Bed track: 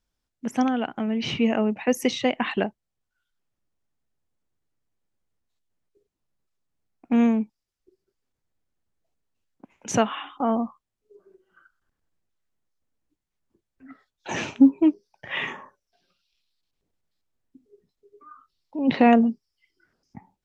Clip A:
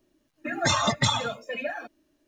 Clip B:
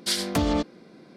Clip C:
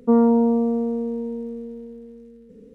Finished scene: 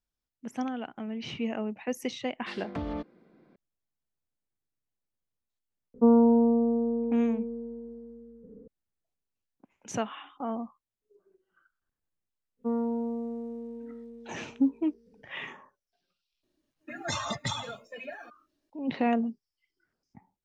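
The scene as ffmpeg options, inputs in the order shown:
-filter_complex "[3:a]asplit=2[a][b];[0:a]volume=-10dB[c];[2:a]lowpass=2.2k[d];[a]lowpass=f=1.2k:w=0.5412,lowpass=f=1.2k:w=1.3066[e];[d]atrim=end=1.16,asetpts=PTS-STARTPTS,volume=-10.5dB,afade=t=in:d=0.004:c=hsin,afade=t=out:st=1.156:d=0.004:c=hsin,adelay=2400[f];[e]atrim=end=2.74,asetpts=PTS-STARTPTS,volume=-3.5dB,afade=t=in:d=0.004:c=hsin,afade=t=out:st=2.736:d=0.004:c=hsin,adelay=5940[g];[b]atrim=end=2.74,asetpts=PTS-STARTPTS,volume=-13.5dB,afade=t=in:d=0.1,afade=t=out:st=2.64:d=0.1,adelay=12570[h];[1:a]atrim=end=2.27,asetpts=PTS-STARTPTS,volume=-9.5dB,afade=t=in:d=0.004:c=hsin,afade=t=out:st=2.266:d=0.004:c=hsin,adelay=16430[i];[c][f][g][h][i]amix=inputs=5:normalize=0"

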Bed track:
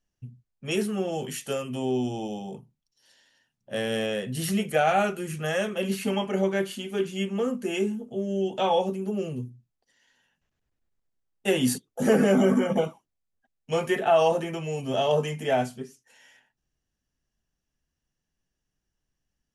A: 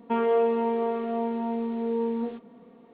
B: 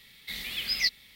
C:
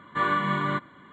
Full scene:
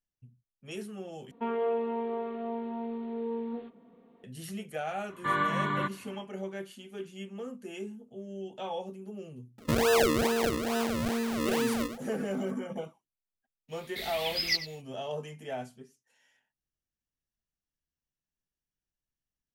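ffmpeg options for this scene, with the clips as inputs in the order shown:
-filter_complex "[1:a]asplit=2[a][b];[0:a]volume=-13dB[c];[b]acrusher=samples=39:mix=1:aa=0.000001:lfo=1:lforange=39:lforate=2.3[d];[2:a]asplit=2[e][f];[f]adelay=93.29,volume=-13dB,highshelf=f=4k:g=-2.1[g];[e][g]amix=inputs=2:normalize=0[h];[c]asplit=2[i][j];[i]atrim=end=1.314[k];[a]atrim=end=2.93,asetpts=PTS-STARTPTS,volume=-7dB[l];[j]atrim=start=4.236[m];[3:a]atrim=end=1.12,asetpts=PTS-STARTPTS,volume=-3.5dB,afade=t=in:d=0.004:c=hsin,afade=t=out:st=1.116:d=0.004:c=hsin,adelay=224469S[n];[d]atrim=end=2.93,asetpts=PTS-STARTPTS,volume=-1.5dB,afade=t=in:d=0.004:c=hsin,afade=t=out:st=2.926:d=0.004:c=hsin,adelay=9580[o];[h]atrim=end=1.15,asetpts=PTS-STARTPTS,volume=-2dB,afade=t=in:d=0.1,afade=t=out:st=1.05:d=0.1,adelay=13680[p];[k][l]acrossfade=d=0.004:c1=hsin:c2=hsin[q];[q][m]acrossfade=d=0.004:c1=hsin:c2=hsin[r];[r][n][o][p]amix=inputs=4:normalize=0"

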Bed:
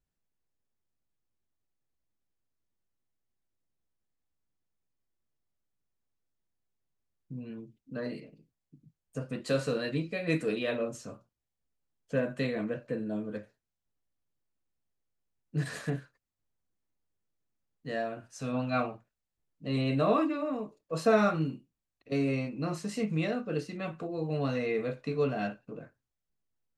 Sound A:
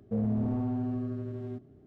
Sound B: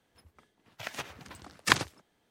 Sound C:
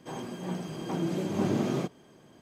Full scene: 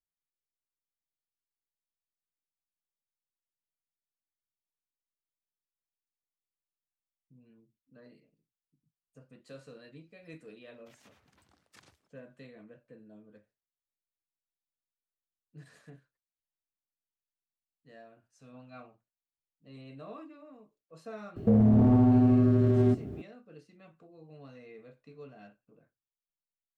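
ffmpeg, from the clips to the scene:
-filter_complex "[0:a]volume=-19.5dB[a];[2:a]acompressor=threshold=-41dB:ratio=2.5:attack=0.87:release=65:knee=1:detection=peak[b];[1:a]alimiter=level_in=30dB:limit=-1dB:release=50:level=0:latency=1[c];[b]atrim=end=2.3,asetpts=PTS-STARTPTS,volume=-18dB,afade=t=in:d=0.004:c=hsin,afade=t=out:st=2.296:d=0.004:c=hsin,adelay=10070[d];[c]atrim=end=1.86,asetpts=PTS-STARTPTS,volume=-14.5dB,afade=t=in:d=0.004:c=hsin,afade=t=out:st=1.856:d=0.004:c=hsin,adelay=21360[e];[a][d][e]amix=inputs=3:normalize=0"

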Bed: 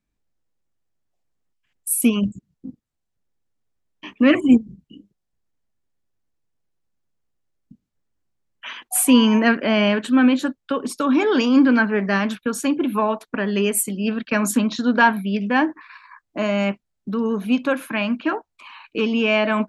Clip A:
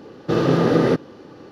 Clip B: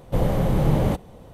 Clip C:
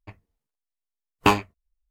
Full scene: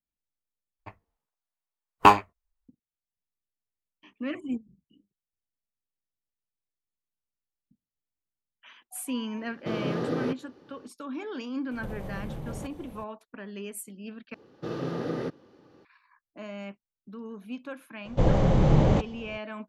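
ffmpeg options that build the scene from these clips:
-filter_complex "[1:a]asplit=2[a][b];[2:a]asplit=2[c][d];[0:a]volume=-18.5dB[e];[3:a]equalizer=f=960:w=0.7:g=11[f];[c]acompressor=threshold=-32dB:ratio=6:attack=3.2:release=140:knee=1:detection=peak[g];[d]aresample=16000,aresample=44100[h];[e]asplit=3[i][j][k];[i]atrim=end=0.794[l];[f]atrim=end=1.9,asetpts=PTS-STARTPTS,volume=-5.5dB[m];[j]atrim=start=2.686:end=14.344[n];[b]atrim=end=1.51,asetpts=PTS-STARTPTS,volume=-15dB[o];[k]atrim=start=15.846[p];[a]atrim=end=1.51,asetpts=PTS-STARTPTS,volume=-13dB,afade=t=in:d=0.004:c=hsin,afade=t=out:st=1.506:d=0.004:c=hsin,adelay=9370[q];[g]atrim=end=1.33,asetpts=PTS-STARTPTS,volume=-2.5dB,afade=t=in:d=0.004:c=hsin,afade=t=out:st=1.326:d=0.004:c=hsin,adelay=11710[r];[h]atrim=end=1.33,asetpts=PTS-STARTPTS,volume=-0.5dB,afade=t=in:d=0.004:c=hsin,afade=t=out:st=1.326:d=0.004:c=hsin,adelay=18050[s];[l][m]acrossfade=d=0.004:c1=hsin:c2=hsin[t];[t][n]acrossfade=d=0.004:c1=hsin:c2=hsin[u];[u][o]acrossfade=d=0.004:c1=hsin:c2=hsin[v];[v][p]acrossfade=d=0.004:c1=hsin:c2=hsin[w];[w][q][r][s]amix=inputs=4:normalize=0"

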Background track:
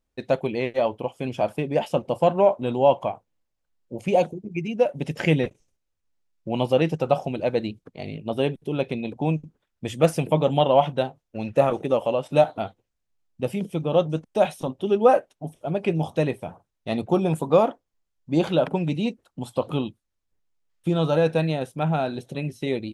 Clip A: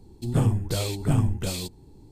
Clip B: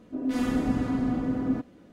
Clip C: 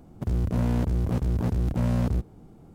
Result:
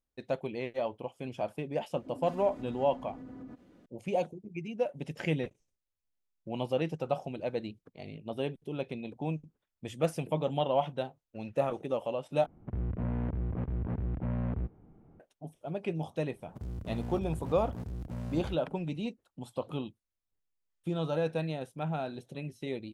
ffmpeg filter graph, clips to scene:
-filter_complex "[3:a]asplit=2[a][b];[0:a]volume=-10.5dB[c];[2:a]acompressor=threshold=-37dB:ratio=6:attack=3.2:release=140:knee=1:detection=peak[d];[a]lowpass=f=2.4k:w=0.5412,lowpass=f=2.4k:w=1.3066[e];[c]asplit=2[f][g];[f]atrim=end=12.464[h];[e]atrim=end=2.74,asetpts=PTS-STARTPTS,volume=-8.5dB[i];[g]atrim=start=15.196[j];[d]atrim=end=1.92,asetpts=PTS-STARTPTS,volume=-6.5dB,afade=t=in:d=0.004:c=hsin,afade=t=out:st=1.916:d=0.004:c=hsin,adelay=1940[k];[b]atrim=end=2.74,asetpts=PTS-STARTPTS,volume=-14dB,afade=t=in:d=0.004:c=hsin,afade=t=out:st=2.736:d=0.004:c=hsin,adelay=16340[l];[h][i]acrossfade=d=0.004:c1=hsin:c2=hsin[m];[m][j]acrossfade=d=0.004:c1=hsin:c2=hsin[n];[n][k][l]amix=inputs=3:normalize=0"

